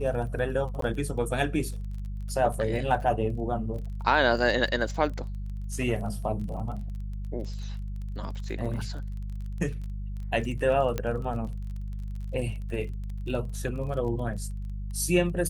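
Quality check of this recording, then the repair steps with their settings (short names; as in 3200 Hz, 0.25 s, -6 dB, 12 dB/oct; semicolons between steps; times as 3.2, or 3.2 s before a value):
crackle 27/s -37 dBFS
hum 50 Hz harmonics 4 -34 dBFS
0.81–0.82 gap 13 ms
10.98 pop -15 dBFS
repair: de-click; de-hum 50 Hz, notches 4; interpolate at 0.81, 13 ms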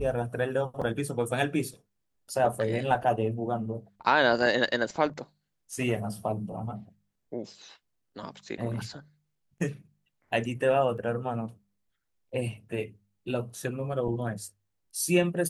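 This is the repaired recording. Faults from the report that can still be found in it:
10.98 pop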